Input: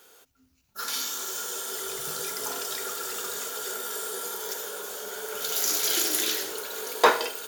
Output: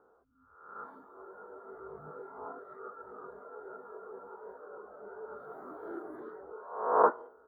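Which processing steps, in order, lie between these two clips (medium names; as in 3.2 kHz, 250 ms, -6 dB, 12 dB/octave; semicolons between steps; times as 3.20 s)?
reverse spectral sustain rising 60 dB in 0.86 s; elliptic low-pass 1.3 kHz, stop band 50 dB; reverb removal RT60 1.7 s; trim -5.5 dB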